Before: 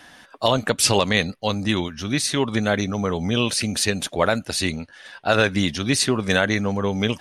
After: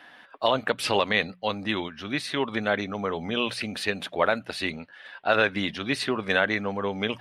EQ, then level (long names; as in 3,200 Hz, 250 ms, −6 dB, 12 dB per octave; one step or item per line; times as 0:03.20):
high-frequency loss of the air 460 metres
RIAA equalisation recording
mains-hum notches 60/120/180 Hz
0.0 dB